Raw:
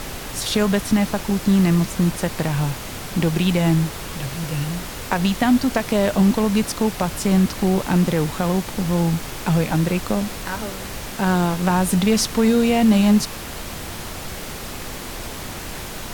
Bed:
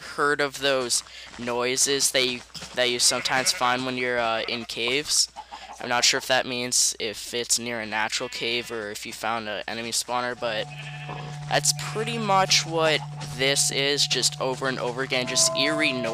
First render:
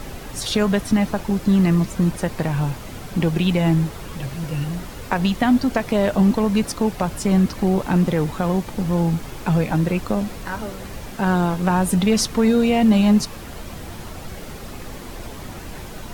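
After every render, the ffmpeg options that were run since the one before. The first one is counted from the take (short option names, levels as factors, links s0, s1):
-af "afftdn=nr=8:nf=-32"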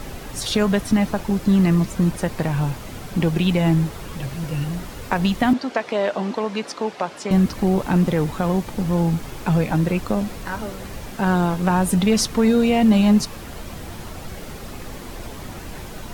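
-filter_complex "[0:a]asettb=1/sr,asplit=3[s0][s1][s2];[s0]atrim=end=5.534[s3];[s1]atrim=start=5.53:end=7.31,asetpts=PTS-STARTPTS,afade=t=in:d=0.004:c=qsin,afade=t=out:st=1.776:d=0.004:c=qsin,highpass=370,lowpass=5300[s4];[s2]atrim=start=7.306[s5];[s3][s4]acrossfade=d=0.004:c1=hsin:c2=qsin[s6];[s6][s5]acrossfade=d=0.004:c1=qsin:c2=hsin"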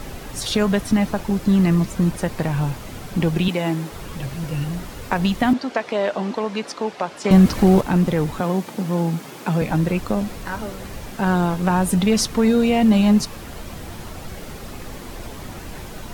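-filter_complex "[0:a]asettb=1/sr,asplit=3[s0][s1][s2];[s0]atrim=end=3.484[s3];[s1]atrim=start=3.48:end=3.92,asetpts=PTS-STARTPTS,afade=t=in:d=0.004:c=qsin,afade=t=out:st=0.436:d=0.004:c=qsin,highpass=250[s4];[s2]atrim=start=3.916[s5];[s3][s4]acrossfade=d=0.004:c1=hsin:c2=qsin[s6];[s6][s5]acrossfade=d=0.004:c1=qsin:c2=hsin,asettb=1/sr,asplit=3[s7][s8][s9];[s7]atrim=end=7.244[s10];[s8]atrim=start=7.24:end=7.81,asetpts=PTS-STARTPTS,afade=t=in:d=0.004:c=qsin,afade=t=out:st=0.566:d=0.004:c=qsin,acontrast=53[s11];[s9]atrim=start=7.806[s12];[s10][s11]acrossfade=d=0.004:c1=hsin:c2=qsin[s13];[s13][s12]acrossfade=d=0.004:c1=qsin:c2=hsin,asettb=1/sr,asplit=3[s14][s15][s16];[s14]atrim=end=8.404[s17];[s15]atrim=start=8.4:end=9.62,asetpts=PTS-STARTPTS,afade=t=in:d=0.004:c=qsin,afade=t=out:st=1.216:d=0.004:c=qsin,highpass=f=160:w=0.5412,highpass=f=160:w=1.3066[s18];[s16]atrim=start=9.616[s19];[s17][s18]acrossfade=d=0.004:c1=hsin:c2=qsin[s20];[s20][s19]acrossfade=d=0.004:c1=qsin:c2=hsin"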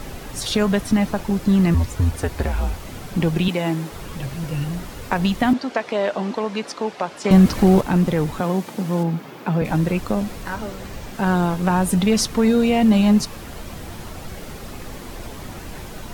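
-filter_complex "[0:a]asettb=1/sr,asplit=3[s0][s1][s2];[s0]atrim=end=1.744[s3];[s1]atrim=start=1.74:end=2.85,asetpts=PTS-STARTPTS,afade=t=in:d=0.004:c=qsin,afade=t=out:st=1.106:d=0.004:c=qsin,afreqshift=-89[s4];[s2]atrim=start=2.846[s5];[s3][s4]acrossfade=d=0.004:c1=hsin:c2=qsin[s6];[s6][s5]acrossfade=d=0.004:c1=qsin:c2=hsin,asettb=1/sr,asplit=3[s7][s8][s9];[s7]atrim=end=9.034[s10];[s8]atrim=start=9.03:end=9.65,asetpts=PTS-STARTPTS,afade=t=in:d=0.004:c=qsin,afade=t=out:st=0.616:d=0.004:c=qsin,equalizer=f=9000:w=0.54:g=-12.5[s11];[s9]atrim=start=9.646[s12];[s10][s11]acrossfade=d=0.004:c1=hsin:c2=qsin[s13];[s13][s12]acrossfade=d=0.004:c1=qsin:c2=hsin,asettb=1/sr,asplit=3[s14][s15][s16];[s14]atrim=end=10.544[s17];[s15]atrim=start=10.54:end=11.15,asetpts=PTS-STARTPTS,afade=t=in:d=0.004:c=qsin,afade=t=out:st=0.606:d=0.004:c=qsin,equalizer=f=11000:w=2.1:g=-6[s18];[s16]atrim=start=11.146[s19];[s17][s18]acrossfade=d=0.004:c1=hsin:c2=qsin[s20];[s20][s19]acrossfade=d=0.004:c1=qsin:c2=hsin"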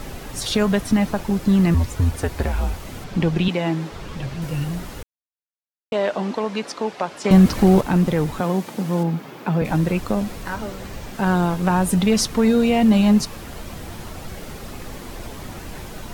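-filter_complex "[0:a]asettb=1/sr,asplit=3[s0][s1][s2];[s0]atrim=end=3.044[s3];[s1]atrim=start=3.04:end=4.42,asetpts=PTS-STARTPTS,afade=t=in:d=0.004:c=qsin,afade=t=out:st=1.376:d=0.004:c=qsin,acrossover=split=6800[s4][s5];[s5]acompressor=threshold=0.00112:ratio=4:attack=1:release=60[s6];[s4][s6]amix=inputs=2:normalize=0[s7];[s2]atrim=start=4.416[s8];[s3][s7]acrossfade=d=0.004:c1=hsin:c2=qsin[s9];[s9][s8]acrossfade=d=0.004:c1=qsin:c2=hsin,asplit=3[s10][s11][s12];[s10]atrim=end=5.03,asetpts=PTS-STARTPTS,afade=t=out:st=5.026:d=0.004:c=hsin[s13];[s11]atrim=start=5.03:end=5.92,asetpts=PTS-STARTPTS,volume=0[s14];[s12]atrim=start=5.92,asetpts=PTS-STARTPTS,afade=t=in:d=0.004:c=hsin[s15];[s13][s14][s15]concat=n=3:v=0:a=1"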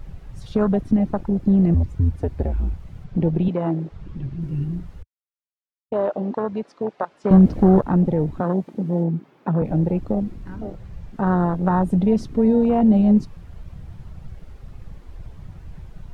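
-af "lowpass=f=2800:p=1,afwtdn=0.0794"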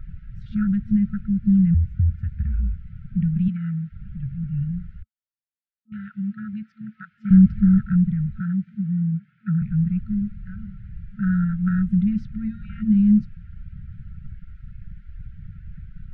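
-af "afftfilt=real='re*(1-between(b*sr/4096,220,1300))':imag='im*(1-between(b*sr/4096,220,1300))':win_size=4096:overlap=0.75,lowpass=1800"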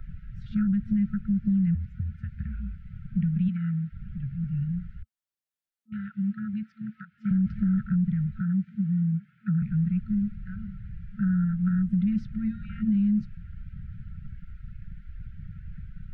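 -filter_complex "[0:a]alimiter=limit=0.2:level=0:latency=1:release=32,acrossover=split=160|610[s0][s1][s2];[s0]acompressor=threshold=0.0178:ratio=4[s3];[s1]acompressor=threshold=0.0708:ratio=4[s4];[s2]acompressor=threshold=0.00501:ratio=4[s5];[s3][s4][s5]amix=inputs=3:normalize=0"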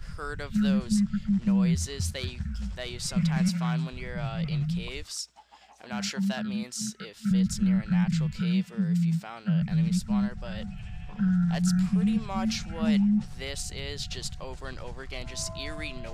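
-filter_complex "[1:a]volume=0.188[s0];[0:a][s0]amix=inputs=2:normalize=0"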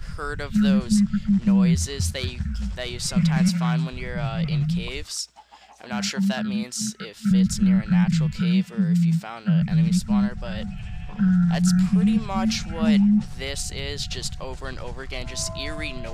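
-af "volume=1.88"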